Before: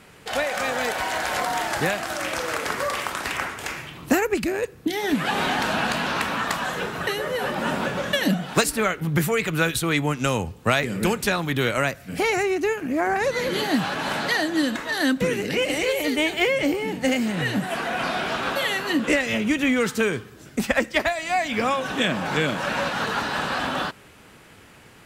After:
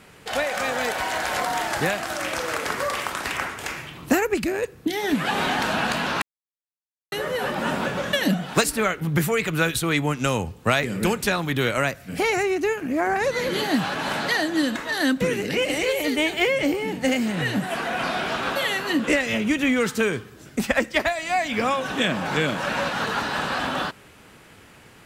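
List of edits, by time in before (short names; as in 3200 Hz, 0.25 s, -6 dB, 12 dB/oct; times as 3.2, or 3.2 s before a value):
6.22–7.12 mute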